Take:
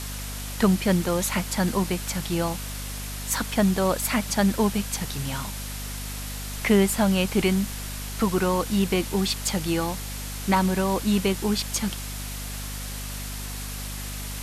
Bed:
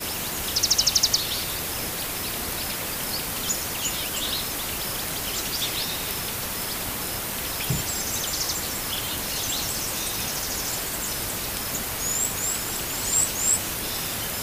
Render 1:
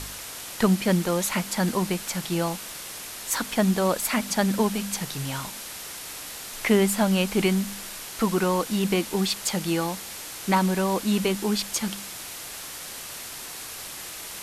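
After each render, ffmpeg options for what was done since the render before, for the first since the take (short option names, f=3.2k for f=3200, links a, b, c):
-af "bandreject=f=50:t=h:w=4,bandreject=f=100:t=h:w=4,bandreject=f=150:t=h:w=4,bandreject=f=200:t=h:w=4,bandreject=f=250:t=h:w=4"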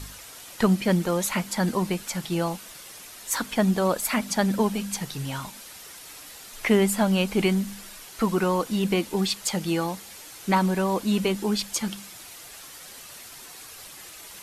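-af "afftdn=nr=8:nf=-38"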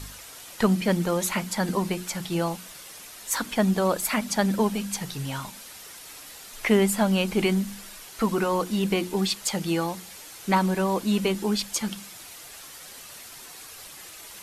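-af "bandreject=f=60:t=h:w=6,bandreject=f=120:t=h:w=6,bandreject=f=180:t=h:w=6,bandreject=f=240:t=h:w=6,bandreject=f=300:t=h:w=6,bandreject=f=360:t=h:w=6"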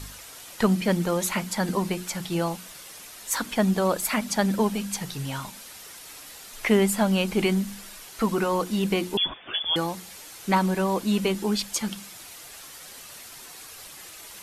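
-filter_complex "[0:a]asettb=1/sr,asplit=3[a][b][c];[a]atrim=end=9.174[d];[b]atrim=start=9.17:end=9.76,asetpts=PTS-STARTPTS,afade=t=in:d=0.004:c=qsin,afade=t=out:st=0.586:d=0.004:c=qsin,lowpass=f=3.1k:t=q:w=0.5098,lowpass=f=3.1k:t=q:w=0.6013,lowpass=f=3.1k:t=q:w=0.9,lowpass=f=3.1k:t=q:w=2.563,afreqshift=-3600[e];[c]atrim=start=9.756[f];[d][e]acrossfade=d=0.004:c1=hsin:c2=qsin[g];[g][f]acrossfade=d=0.004:c1=qsin:c2=hsin"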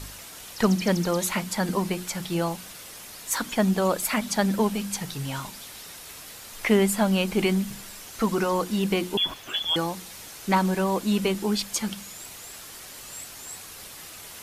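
-filter_complex "[1:a]volume=-19.5dB[a];[0:a][a]amix=inputs=2:normalize=0"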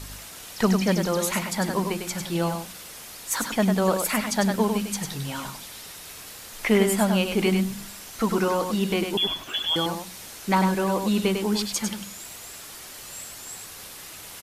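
-af "aecho=1:1:100:0.531"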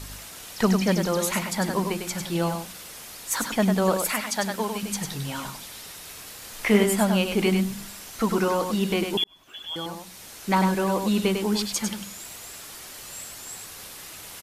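-filter_complex "[0:a]asettb=1/sr,asplit=3[a][b][c];[a]atrim=end=4.124[d];[b]atrim=start=4.12:end=4.83,asetpts=PTS-STARTPTS,afade=t=in:d=0.004:c=qsin,afade=t=out:st=0.706:d=0.004:c=qsin,lowshelf=f=380:g=-11[e];[c]atrim=start=4.826[f];[d][e]acrossfade=d=0.004:c1=hsin:c2=qsin[g];[g][f]acrossfade=d=0.004:c1=qsin:c2=hsin,asettb=1/sr,asplit=3[h][i][j];[h]atrim=end=6.394[k];[i]atrim=start=6.39:end=6.84,asetpts=PTS-STARTPTS,afade=t=in:d=0.004:c=qsin,afade=t=out:st=0.446:d=0.004:c=qsin,asplit=2[l][m];[m]adelay=29,volume=-6.5dB[n];[l][n]amix=inputs=2:normalize=0,atrim=end_sample=19845[o];[j]atrim=start=6.836[p];[k][o]acrossfade=d=0.004:c1=hsin:c2=qsin[q];[q][p]acrossfade=d=0.004:c1=qsin:c2=hsin,asplit=2[r][s];[r]atrim=end=9.24,asetpts=PTS-STARTPTS,afade=t=out:st=9.236:d=0.004:c=hsin[t];[s]atrim=start=9.24,asetpts=PTS-STARTPTS,afade=t=in:d=1.38[u];[t][u]concat=n=2:v=0:a=1"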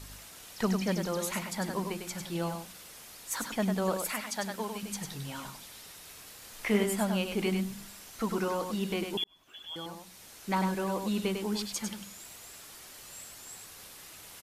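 -af "volume=-8dB"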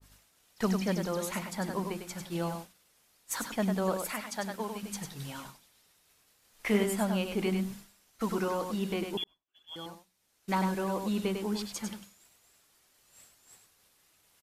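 -af "agate=range=-33dB:threshold=-37dB:ratio=3:detection=peak,adynamicequalizer=threshold=0.00398:dfrequency=1900:dqfactor=0.7:tfrequency=1900:tqfactor=0.7:attack=5:release=100:ratio=0.375:range=2:mode=cutabove:tftype=highshelf"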